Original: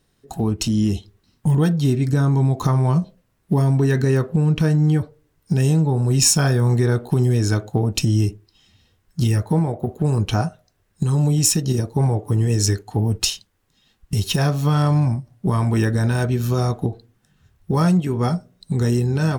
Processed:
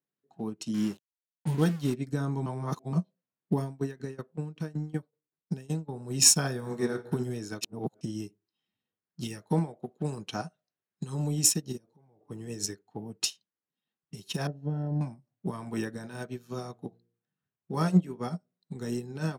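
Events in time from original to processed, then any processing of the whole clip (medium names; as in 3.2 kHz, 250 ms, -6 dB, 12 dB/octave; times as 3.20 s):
0.74–1.94 s: small samples zeroed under -28 dBFS
2.46–2.93 s: reverse
3.62–5.93 s: tremolo saw down 5.3 Hz, depth 80%
6.54–7.07 s: reverb throw, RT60 1.2 s, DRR 4 dB
7.61–8.01 s: reverse
9.23–11.14 s: peaking EQ 4.4 kHz +5.5 dB 2.6 oct
11.77–12.21 s: compression 16:1, threshold -29 dBFS
12.75–13.21 s: treble shelf 5 kHz -8 dB
14.47–15.01 s: boxcar filter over 38 samples
16.02–18.20 s: de-hum 58.74 Hz, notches 10
whole clip: level-controlled noise filter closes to 2.7 kHz, open at -17 dBFS; high-pass 150 Hz 24 dB/octave; upward expansion 2.5:1, over -30 dBFS; trim -1.5 dB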